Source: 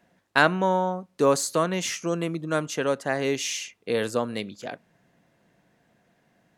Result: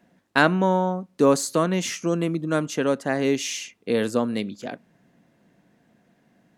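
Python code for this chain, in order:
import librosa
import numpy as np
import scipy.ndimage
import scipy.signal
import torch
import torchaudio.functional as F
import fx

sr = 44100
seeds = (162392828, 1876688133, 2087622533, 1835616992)

y = fx.peak_eq(x, sr, hz=240.0, db=7.5, octaves=1.2)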